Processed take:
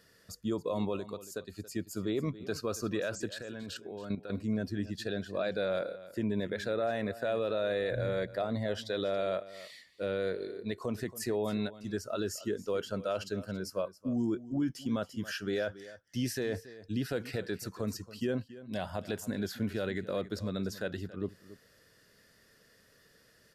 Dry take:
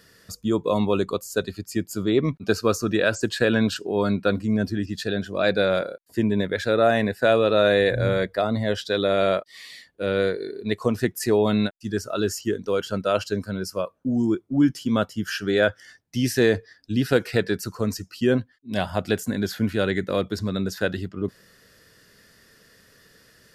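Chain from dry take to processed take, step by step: bell 590 Hz +3.5 dB 0.69 oct; 0.96–1.52 compressor 6:1, threshold -27 dBFS, peak gain reduction 10.5 dB; limiter -14.5 dBFS, peak gain reduction 9 dB; 3.29–4.3 level quantiser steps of 11 dB; echo 0.278 s -16.5 dB; gain -9 dB

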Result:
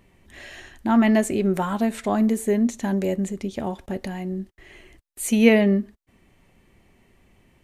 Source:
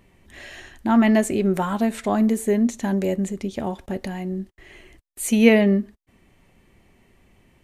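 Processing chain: gain -1 dB

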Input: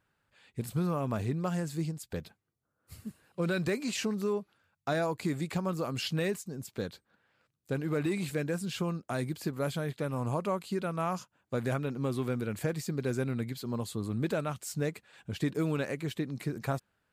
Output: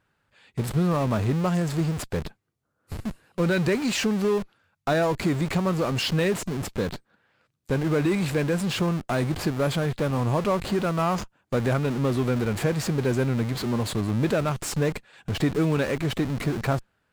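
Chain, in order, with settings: in parallel at -5 dB: Schmitt trigger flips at -44 dBFS; on the sum: high shelf 8600 Hz -6.5 dB; gain +5.5 dB

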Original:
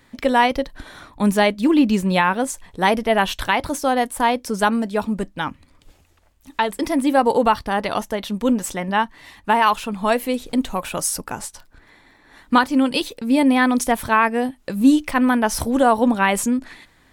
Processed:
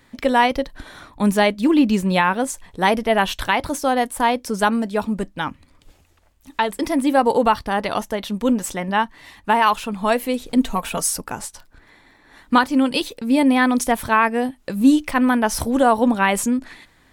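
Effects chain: 10.56–11.13 comb 4.4 ms, depth 65%

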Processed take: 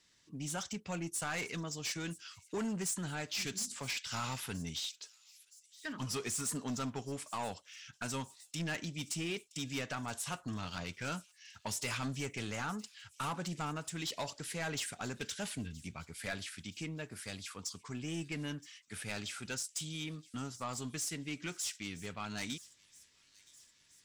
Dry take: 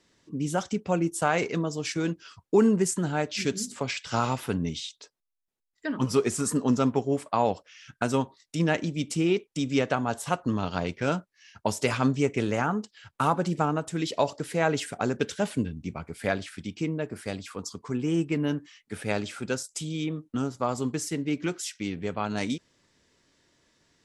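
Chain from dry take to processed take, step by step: passive tone stack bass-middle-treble 5-5-5; soft clip -38.5 dBFS, distortion -10 dB; thin delay 0.971 s, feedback 58%, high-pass 4300 Hz, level -17 dB; gain +6.5 dB

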